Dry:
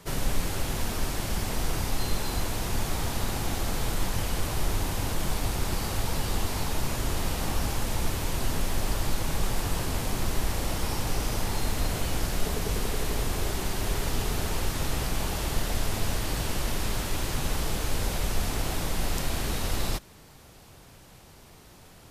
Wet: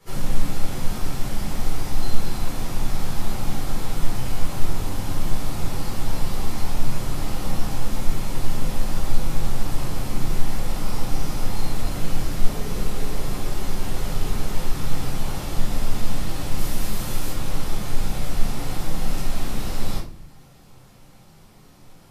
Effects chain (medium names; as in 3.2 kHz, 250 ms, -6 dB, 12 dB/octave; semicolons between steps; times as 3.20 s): 16.57–17.31 s: treble shelf 7.6 kHz +8.5 dB; reverberation RT60 0.45 s, pre-delay 8 ms, DRR -7 dB; trim -10.5 dB